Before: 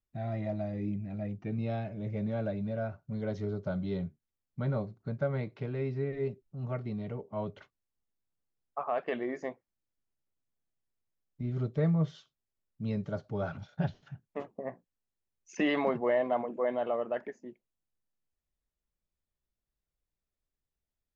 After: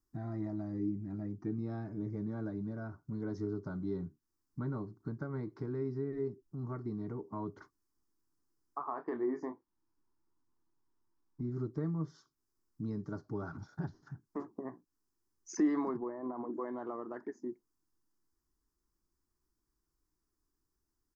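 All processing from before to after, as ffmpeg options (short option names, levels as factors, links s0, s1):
-filter_complex "[0:a]asettb=1/sr,asplit=3[s0][s1][s2];[s0]atrim=end=8.884[s3];[s1]atrim=start=8.88:end=11.42,asetpts=PTS-STARTPTS,afade=t=in:d=0.004:c=qsin,afade=t=out:st=2.536:d=0.004:c=qsin,lowpass=f=2900:p=1,equalizer=f=920:t=o:w=0.35:g=7,asplit=2[s4][s5];[s5]adelay=27,volume=0.355[s6];[s4][s6]amix=inputs=2:normalize=0,atrim=end_sample=112014[s7];[s2]atrim=start=11.416[s8];[s3][s7]acrossfade=d=0.004:c1=hsin:c2=qsin[s9];[s9][s8]acrossfade=d=0.004:c1=qsin:c2=hsin,asettb=1/sr,asplit=3[s10][s11][s12];[s10]atrim=end=15.974[s13];[s11]atrim=start=15.97:end=16.53,asetpts=PTS-STARTPTS,afade=t=in:d=0.004:c=qsin,afade=t=out:st=0.556:d=0.004:c=qsin,acompressor=threshold=0.0355:ratio=6:attack=3.2:release=140:knee=1:detection=peak,lowpass=1200[s14];[s12]atrim=start=16.526[s15];[s13][s14]acrossfade=d=0.004:c1=hsin:c2=qsin[s16];[s16][s15]acrossfade=d=0.004:c1=qsin:c2=hsin,acompressor=threshold=0.00316:ratio=2,firequalizer=gain_entry='entry(200,0);entry(320,12);entry(550,-11);entry(1000,6);entry(1800,-3);entry(2700,-23);entry(5000,4);entry(8300,0)':delay=0.05:min_phase=1,volume=1.68"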